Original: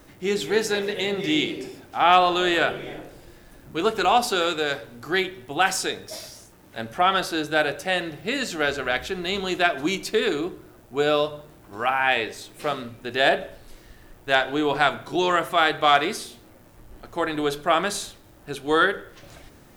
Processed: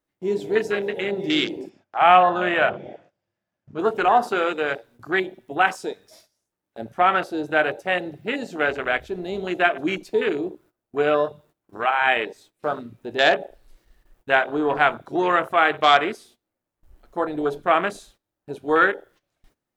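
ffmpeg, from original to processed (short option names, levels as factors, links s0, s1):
-filter_complex "[0:a]asettb=1/sr,asplit=3[s0][s1][s2];[s0]atrim=end=1.694[s3];[s1]atrim=start=1.69:end=3.79,asetpts=PTS-STARTPTS,afade=t=in:d=0.004:c=qsin,afade=t=out:st=2.096:d=0.004:c=qsin,highpass=100,equalizer=f=100:t=q:w=4:g=10,equalizer=f=200:t=q:w=4:g=6,equalizer=f=290:t=q:w=4:g=-6,equalizer=f=430:t=q:w=4:g=-7,equalizer=f=620:t=q:w=4:g=5,equalizer=f=4000:t=q:w=4:g=-6,lowpass=f=6100:w=0.5412,lowpass=f=6100:w=1.3066[s4];[s2]atrim=start=3.786[s5];[s3][s4]acrossfade=d=0.004:c1=hsin:c2=qsin[s6];[s6][s5]acrossfade=d=0.004:c1=qsin:c2=hsin,afwtdn=0.0447,agate=range=0.141:threshold=0.00224:ratio=16:detection=peak,lowshelf=f=190:g=-7,volume=1.33"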